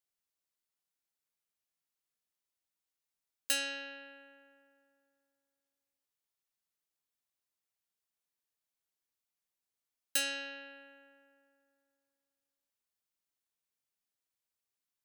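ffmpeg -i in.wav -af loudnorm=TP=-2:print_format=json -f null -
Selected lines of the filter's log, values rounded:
"input_i" : "-35.2",
"input_tp" : "-17.1",
"input_lra" : "0.0",
"input_thresh" : "-48.4",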